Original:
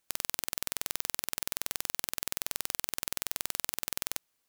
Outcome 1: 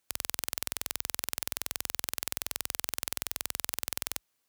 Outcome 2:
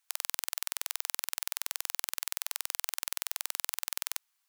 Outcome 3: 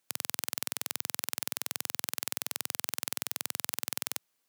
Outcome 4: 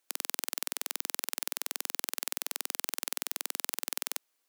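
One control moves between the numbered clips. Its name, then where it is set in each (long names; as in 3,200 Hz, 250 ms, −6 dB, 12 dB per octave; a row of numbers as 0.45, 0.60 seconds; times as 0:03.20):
high-pass filter, corner frequency: 41, 830, 110, 270 Hertz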